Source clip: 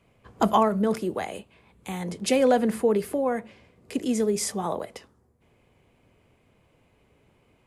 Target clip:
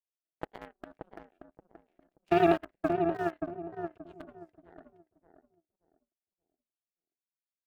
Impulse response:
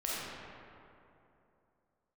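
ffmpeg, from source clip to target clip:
-filter_complex "[0:a]asplit=3[link_01][link_02][link_03];[link_01]bandpass=frequency=530:width_type=q:width=8,volume=0dB[link_04];[link_02]bandpass=frequency=1840:width_type=q:width=8,volume=-6dB[link_05];[link_03]bandpass=frequency=2480:width_type=q:width=8,volume=-9dB[link_06];[link_04][link_05][link_06]amix=inputs=3:normalize=0,highshelf=frequency=4200:gain=12,aeval=exprs='0.188*(cos(1*acos(clip(val(0)/0.188,-1,1)))-cos(1*PI/2))+0.0106*(cos(2*acos(clip(val(0)/0.188,-1,1)))-cos(2*PI/2))+0.0266*(cos(7*acos(clip(val(0)/0.188,-1,1)))-cos(7*PI/2))':channel_layout=same,asplit=2[link_07][link_08];[link_08]acrusher=bits=3:dc=4:mix=0:aa=0.000001,volume=-6dB[link_09];[link_07][link_09]amix=inputs=2:normalize=0,bass=frequency=250:gain=-1,treble=frequency=4000:gain=-10,aeval=exprs='val(0)*sin(2*PI*170*n/s)':channel_layout=same,asplit=2[link_10][link_11];[link_11]adelay=578,lowpass=frequency=820:poles=1,volume=-4dB,asplit=2[link_12][link_13];[link_13]adelay=578,lowpass=frequency=820:poles=1,volume=0.29,asplit=2[link_14][link_15];[link_15]adelay=578,lowpass=frequency=820:poles=1,volume=0.29,asplit=2[link_16][link_17];[link_17]adelay=578,lowpass=frequency=820:poles=1,volume=0.29[link_18];[link_12][link_14][link_16][link_18]amix=inputs=4:normalize=0[link_19];[link_10][link_19]amix=inputs=2:normalize=0"

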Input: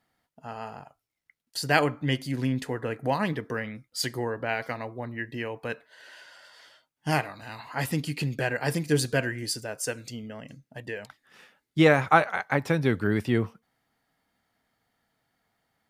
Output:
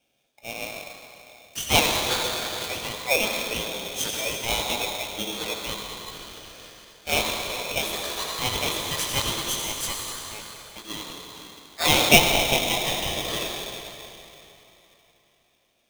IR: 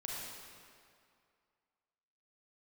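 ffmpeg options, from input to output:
-filter_complex "[0:a]highpass=frequency=960:width_type=q:width=3.7,asplit=2[link_01][link_02];[link_02]highshelf=frequency=1700:width_type=q:width=3:gain=7[link_03];[1:a]atrim=start_sample=2205,asetrate=26019,aresample=44100,adelay=20[link_04];[link_03][link_04]afir=irnorm=-1:irlink=0,volume=-6.5dB[link_05];[link_01][link_05]amix=inputs=2:normalize=0,aeval=exprs='val(0)*sgn(sin(2*PI*1500*n/s))':channel_layout=same,volume=-1.5dB"

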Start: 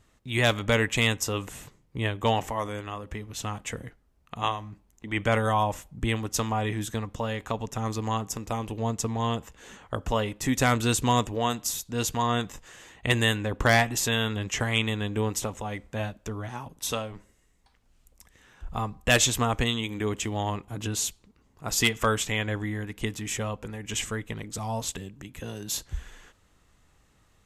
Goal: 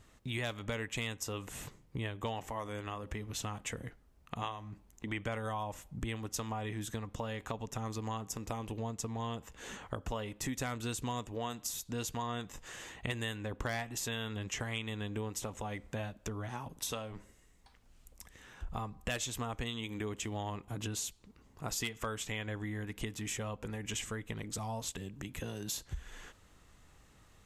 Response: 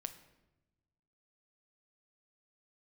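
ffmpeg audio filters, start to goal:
-af "acompressor=threshold=-39dB:ratio=4,volume=1.5dB"

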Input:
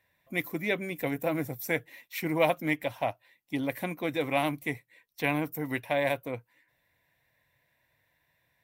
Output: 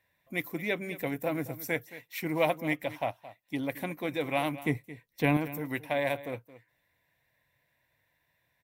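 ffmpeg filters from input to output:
ffmpeg -i in.wav -filter_complex "[0:a]asettb=1/sr,asplit=3[link_01][link_02][link_03];[link_01]atrim=end=4.654[link_04];[link_02]atrim=start=4.65:end=5.37,asetpts=PTS-STARTPTS,afade=type=in:duration=0.004:curve=qsin,afade=type=out:start_time=0.716:duration=0.004:curve=qsin,lowshelf=frequency=490:gain=10[link_05];[link_03]atrim=start=5.366[link_06];[link_04][link_05]acrossfade=duration=0.004:curve1=hsin:curve2=qsin[link_07];[link_07][link_06]acrossfade=duration=0.004:curve1=qsin:curve2=hsin,aecho=1:1:221:0.158,volume=-2dB" out.wav

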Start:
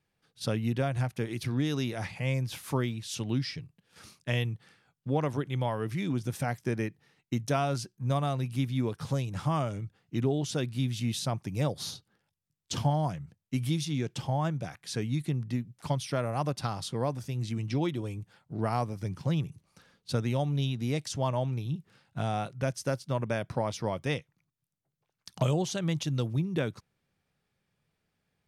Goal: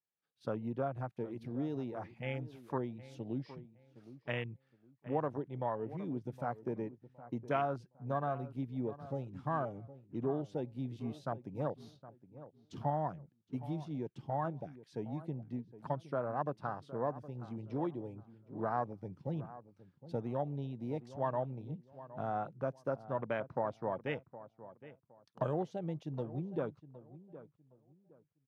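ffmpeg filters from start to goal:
ffmpeg -i in.wav -filter_complex "[0:a]afwtdn=0.0158,highpass=frequency=430:poles=1,equalizer=frequency=9300:width_type=o:width=1.9:gain=-13.5,asplit=2[link_01][link_02];[link_02]adelay=765,lowpass=frequency=1500:poles=1,volume=-15dB,asplit=2[link_03][link_04];[link_04]adelay=765,lowpass=frequency=1500:poles=1,volume=0.27,asplit=2[link_05][link_06];[link_06]adelay=765,lowpass=frequency=1500:poles=1,volume=0.27[link_07];[link_03][link_05][link_07]amix=inputs=3:normalize=0[link_08];[link_01][link_08]amix=inputs=2:normalize=0,adynamicequalizer=threshold=0.00178:dfrequency=3100:dqfactor=0.7:tfrequency=3100:tqfactor=0.7:attack=5:release=100:ratio=0.375:range=2.5:mode=cutabove:tftype=highshelf,volume=-1.5dB" out.wav

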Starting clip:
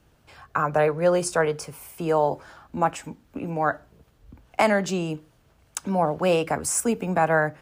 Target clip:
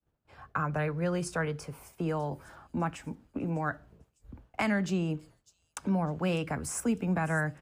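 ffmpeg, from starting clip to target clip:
ffmpeg -i in.wav -filter_complex "[0:a]highshelf=frequency=2400:gain=-12,agate=range=-33dB:threshold=-48dB:ratio=3:detection=peak,acrossover=split=260|1400|4300[link_01][link_02][link_03][link_04];[link_02]acompressor=threshold=-37dB:ratio=6[link_05];[link_04]aecho=1:1:602|1204|1806|2408:0.178|0.0818|0.0376|0.0173[link_06];[link_01][link_05][link_03][link_06]amix=inputs=4:normalize=0" out.wav

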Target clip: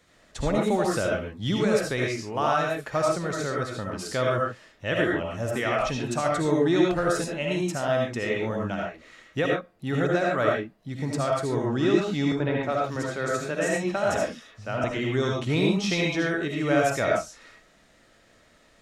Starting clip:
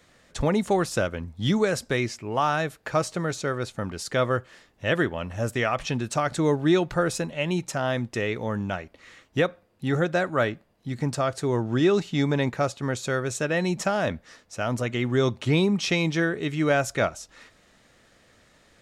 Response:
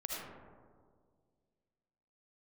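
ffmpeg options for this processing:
-filter_complex "[0:a]asettb=1/sr,asplit=3[link_01][link_02][link_03];[link_01]atrim=end=12.324[link_04];[link_02]atrim=start=12.32:end=14.84,asetpts=PTS-STARTPTS,afade=type=in:duration=0.004:curve=qsin,afade=type=out:start_time=2.516:duration=0.004:curve=qsin,acrossover=split=160|3800[link_05][link_06][link_07];[link_06]adelay=80[link_08];[link_07]adelay=310[link_09];[link_05][link_08][link_09]amix=inputs=3:normalize=0,atrim=end_sample=111132[link_10];[link_03]atrim=start=14.836[link_11];[link_04][link_10]acrossfade=duration=0.004:curve1=hsin:curve2=qsin[link_12];[link_12][link_11]acrossfade=duration=0.004:curve1=qsin:curve2=hsin[link_13];[1:a]atrim=start_sample=2205,atrim=end_sample=6615[link_14];[link_13][link_14]afir=irnorm=-1:irlink=0"

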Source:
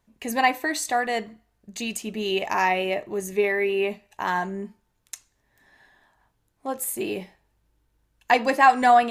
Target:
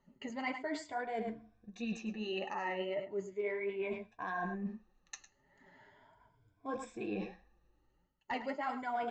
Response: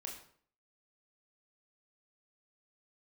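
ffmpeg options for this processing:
-af "afftfilt=real='re*pow(10,15/40*sin(2*PI*(1.7*log(max(b,1)*sr/1024/100)/log(2)-(0.37)*(pts-256)/sr)))':imag='im*pow(10,15/40*sin(2*PI*(1.7*log(max(b,1)*sr/1024/100)/log(2)-(0.37)*(pts-256)/sr)))':win_size=1024:overlap=0.75,aresample=16000,aeval=exprs='clip(val(0),-1,0.376)':channel_layout=same,aresample=44100,lowpass=frequency=1800:poles=1,aecho=1:1:105:0.2,flanger=delay=3.7:depth=6.9:regen=40:speed=1.6:shape=triangular,areverse,acompressor=threshold=-38dB:ratio=5,areverse,volume=1.5dB"

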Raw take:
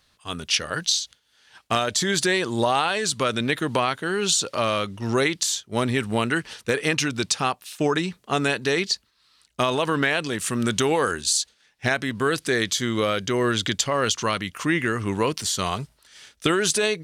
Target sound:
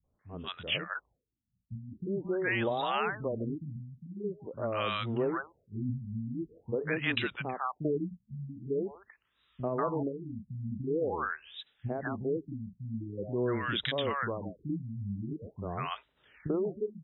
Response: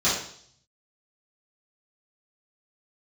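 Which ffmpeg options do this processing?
-filter_complex "[0:a]acrossover=split=210|800[link_01][link_02][link_03];[link_02]adelay=40[link_04];[link_03]adelay=190[link_05];[link_01][link_04][link_05]amix=inputs=3:normalize=0,afftfilt=real='re*lt(b*sr/1024,220*pow(4000/220,0.5+0.5*sin(2*PI*0.45*pts/sr)))':imag='im*lt(b*sr/1024,220*pow(4000/220,0.5+0.5*sin(2*PI*0.45*pts/sr)))':win_size=1024:overlap=0.75,volume=-6dB"

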